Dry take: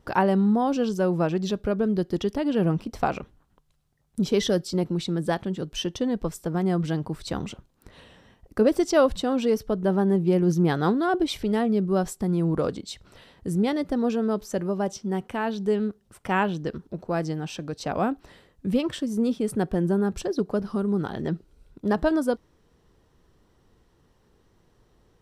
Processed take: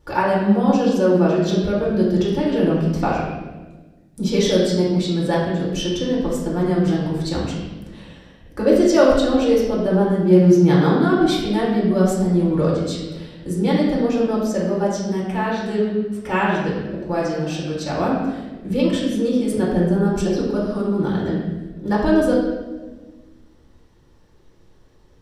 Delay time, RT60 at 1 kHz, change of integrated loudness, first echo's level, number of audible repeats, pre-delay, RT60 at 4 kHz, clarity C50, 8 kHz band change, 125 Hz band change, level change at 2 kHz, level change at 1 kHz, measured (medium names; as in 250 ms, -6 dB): no echo, 1.0 s, +6.5 dB, no echo, no echo, 3 ms, 1.0 s, 0.5 dB, +5.5 dB, +7.0 dB, +6.0 dB, +4.5 dB